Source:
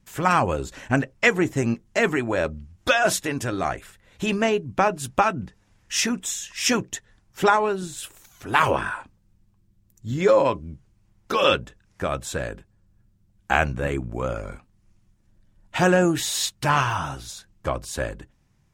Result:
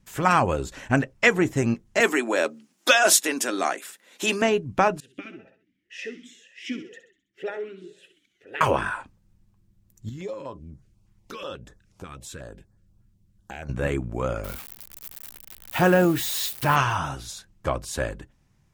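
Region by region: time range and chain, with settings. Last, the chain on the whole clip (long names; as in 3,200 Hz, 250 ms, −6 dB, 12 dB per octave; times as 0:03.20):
0:02.00–0:04.42: Butterworth high-pass 230 Hz + high-shelf EQ 3,500 Hz +10.5 dB
0:05.00–0:08.61: repeating echo 65 ms, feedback 49%, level −11 dB + formant filter swept between two vowels e-i 2 Hz
0:10.09–0:13.69: downward compressor 2 to 1, threshold −42 dBFS + notch on a step sequencer 8.2 Hz 600–2,800 Hz
0:14.44–0:16.76: spike at every zero crossing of −22.5 dBFS + parametric band 7,100 Hz −9 dB 1.6 octaves
whole clip: no processing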